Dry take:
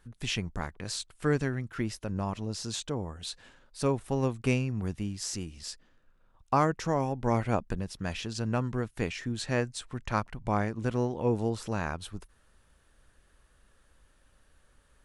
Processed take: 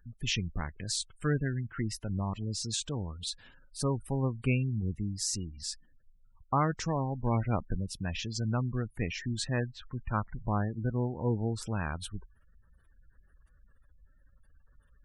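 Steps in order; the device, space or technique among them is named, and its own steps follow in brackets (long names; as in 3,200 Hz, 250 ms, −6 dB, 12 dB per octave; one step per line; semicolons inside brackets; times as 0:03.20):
0:09.47–0:11.00: low-pass filter 2,900 Hz → 1,500 Hz 12 dB per octave
gate on every frequency bin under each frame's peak −20 dB strong
smiley-face EQ (low-shelf EQ 150 Hz +3.5 dB; parametric band 490 Hz −6 dB 2.1 octaves; high-shelf EQ 5,300 Hz +5.5 dB)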